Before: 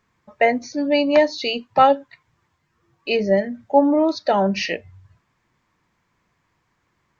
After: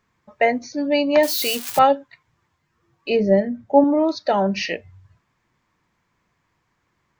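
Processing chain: 1.23–1.79 switching spikes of -16 dBFS; 3.1–3.84 tilt shelf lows +5 dB, about 880 Hz; gain -1 dB

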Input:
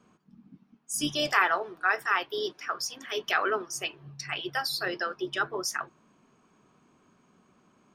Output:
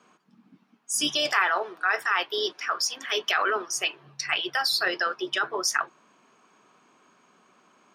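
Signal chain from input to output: weighting filter A; in parallel at 0 dB: negative-ratio compressor -30 dBFS, ratio -0.5; on the sum: gain -1 dB

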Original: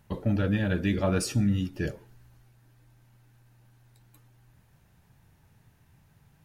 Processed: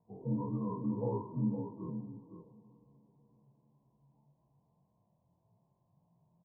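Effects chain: inharmonic rescaling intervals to 78%; chorus 1.8 Hz, delay 17 ms, depth 7.1 ms; steep low-pass 1000 Hz 96 dB/oct; bell 650 Hz -3 dB 0.87 oct; harmonic-percussive split percussive -17 dB; tilt +3.5 dB/oct; echo 0.512 s -9 dB; reverb RT60 4.4 s, pre-delay 44 ms, DRR 16.5 dB; gain +4.5 dB

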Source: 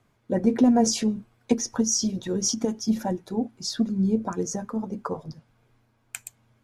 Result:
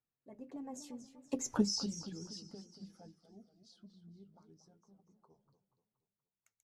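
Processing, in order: Doppler pass-by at 1.55, 41 m/s, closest 3.1 m; warbling echo 0.238 s, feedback 46%, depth 159 cents, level -11.5 dB; gain -4.5 dB

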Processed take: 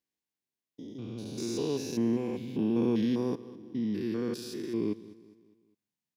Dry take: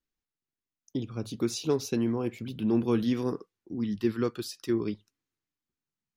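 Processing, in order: stepped spectrum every 0.2 s; HPF 140 Hz 12 dB/oct; bell 1300 Hz -14.5 dB 0.21 oct; on a send: feedback echo 0.203 s, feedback 46%, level -18.5 dB; on the sum: gain +1.5 dB

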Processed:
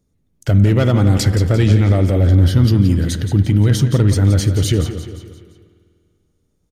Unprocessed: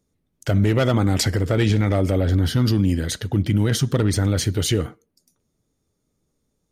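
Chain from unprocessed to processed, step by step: low shelf 220 Hz +8.5 dB; feedback echo 0.173 s, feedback 47%, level -10.5 dB; spring tank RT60 2.2 s, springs 49 ms, chirp 70 ms, DRR 14.5 dB

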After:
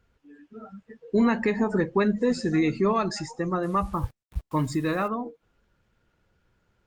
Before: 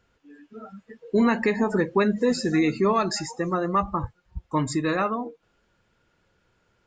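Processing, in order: low shelf 120 Hz +8.5 dB; 3.63–5.08 requantised 8-bit, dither none; gain -2.5 dB; Opus 32 kbps 48000 Hz

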